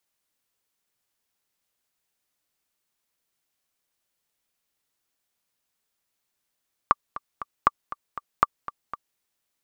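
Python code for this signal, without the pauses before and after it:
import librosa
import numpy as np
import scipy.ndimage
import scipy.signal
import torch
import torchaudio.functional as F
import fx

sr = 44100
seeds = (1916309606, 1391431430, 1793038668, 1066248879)

y = fx.click_track(sr, bpm=237, beats=3, bars=3, hz=1170.0, accent_db=16.0, level_db=-3.0)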